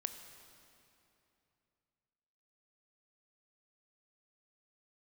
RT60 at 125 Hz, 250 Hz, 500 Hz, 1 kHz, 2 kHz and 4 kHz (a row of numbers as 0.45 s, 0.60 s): 3.5 s, 3.1 s, 3.0 s, 2.8 s, 2.6 s, 2.3 s